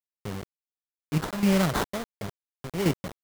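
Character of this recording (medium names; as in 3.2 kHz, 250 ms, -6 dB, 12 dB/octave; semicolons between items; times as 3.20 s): aliases and images of a low sample rate 2.6 kHz, jitter 20%; chopped level 1.4 Hz, depth 65%, duty 65%; a quantiser's noise floor 6-bit, dither none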